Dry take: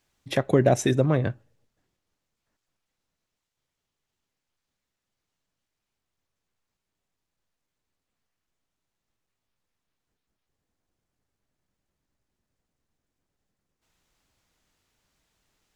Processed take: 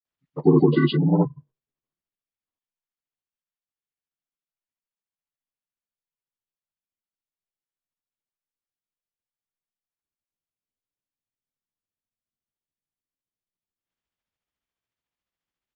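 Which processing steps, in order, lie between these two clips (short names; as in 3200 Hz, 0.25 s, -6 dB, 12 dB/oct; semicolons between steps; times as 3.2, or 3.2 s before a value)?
inharmonic rescaling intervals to 77%; spectral noise reduction 22 dB; grains 0.126 s, grains 14/s, spray 0.1 s, pitch spread up and down by 0 st; gain +6 dB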